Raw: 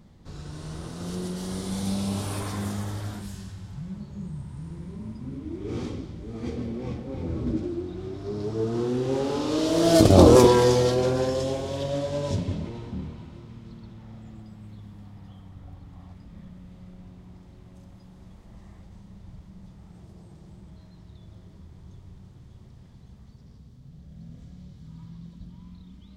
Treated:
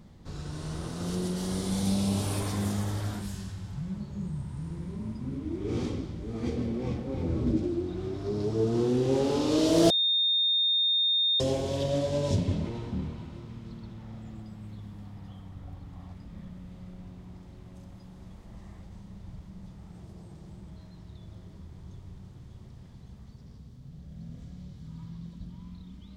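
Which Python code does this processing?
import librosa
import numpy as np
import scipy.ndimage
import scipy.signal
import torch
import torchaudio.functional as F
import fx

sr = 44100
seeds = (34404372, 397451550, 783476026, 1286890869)

y = fx.edit(x, sr, fx.bleep(start_s=9.9, length_s=1.5, hz=3660.0, db=-22.5), tone=tone)
y = fx.dynamic_eq(y, sr, hz=1300.0, q=1.1, threshold_db=-43.0, ratio=4.0, max_db=-5)
y = y * 10.0 ** (1.0 / 20.0)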